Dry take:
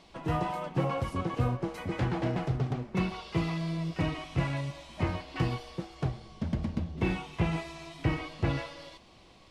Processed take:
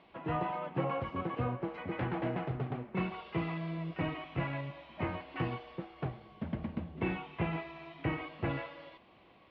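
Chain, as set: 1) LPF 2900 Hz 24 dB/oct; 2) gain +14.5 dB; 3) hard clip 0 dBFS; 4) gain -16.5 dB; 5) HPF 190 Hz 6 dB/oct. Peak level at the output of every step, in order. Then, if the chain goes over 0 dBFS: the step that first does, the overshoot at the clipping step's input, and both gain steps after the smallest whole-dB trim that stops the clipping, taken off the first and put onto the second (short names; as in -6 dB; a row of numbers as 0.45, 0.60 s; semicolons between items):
-16.0, -1.5, -1.5, -18.0, -21.0 dBFS; no overload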